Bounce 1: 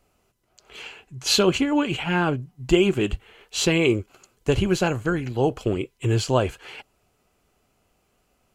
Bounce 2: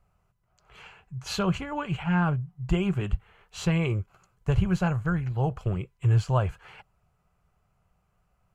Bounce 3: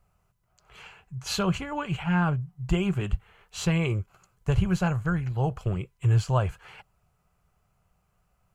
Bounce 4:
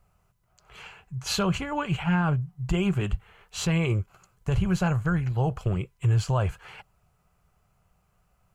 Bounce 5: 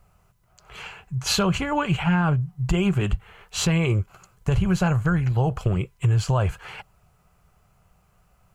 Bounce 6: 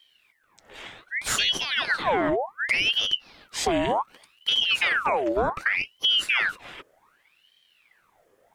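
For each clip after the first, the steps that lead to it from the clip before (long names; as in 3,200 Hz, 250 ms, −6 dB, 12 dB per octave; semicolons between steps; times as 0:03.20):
drawn EQ curve 180 Hz 0 dB, 250 Hz −19 dB, 380 Hz −15 dB, 670 Hz −8 dB, 1,200 Hz −4 dB, 3,400 Hz −16 dB; level +2 dB
high-shelf EQ 4,500 Hz +6 dB
brickwall limiter −18.5 dBFS, peak gain reduction 7 dB; level +2.5 dB
downward compressor 2.5 to 1, threshold −25 dBFS, peak gain reduction 4.5 dB; level +6.5 dB
ring modulator whose carrier an LFO sweeps 1,800 Hz, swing 75%, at 0.66 Hz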